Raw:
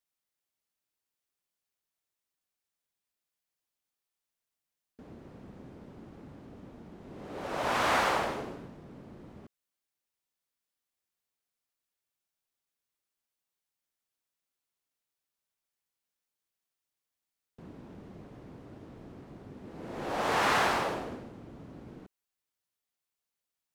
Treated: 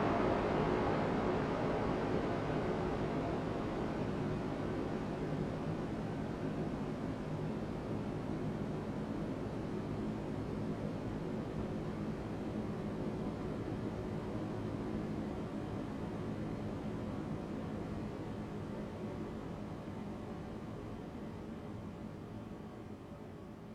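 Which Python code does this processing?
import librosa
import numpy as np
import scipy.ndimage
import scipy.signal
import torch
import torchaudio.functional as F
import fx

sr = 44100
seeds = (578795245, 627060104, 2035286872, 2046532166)

y = fx.env_lowpass_down(x, sr, base_hz=1800.0, full_db=-28.0)
y = fx.paulstretch(y, sr, seeds[0], factor=23.0, window_s=1.0, from_s=8.6)
y = fx.doubler(y, sr, ms=19.0, db=-4.0)
y = y * librosa.db_to_amplitude(8.0)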